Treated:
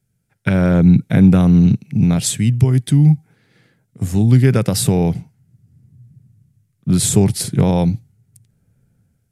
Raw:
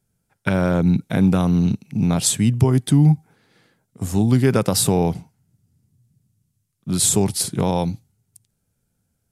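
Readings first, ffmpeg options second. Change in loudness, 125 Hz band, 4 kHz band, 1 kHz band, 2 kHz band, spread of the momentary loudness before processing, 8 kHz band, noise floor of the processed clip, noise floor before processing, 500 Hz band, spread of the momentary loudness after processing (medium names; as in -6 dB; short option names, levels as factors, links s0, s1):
+4.0 dB, +5.5 dB, 0.0 dB, -1.5 dB, +2.0 dB, 10 LU, -1.0 dB, -67 dBFS, -74 dBFS, +1.0 dB, 9 LU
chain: -filter_complex "[0:a]equalizer=f=125:t=o:w=1:g=7,equalizer=f=1000:t=o:w=1:g=-6,equalizer=f=2000:t=o:w=1:g=5,acrossover=split=1700[s0][s1];[s0]dynaudnorm=f=210:g=5:m=3.55[s2];[s2][s1]amix=inputs=2:normalize=0,volume=0.891"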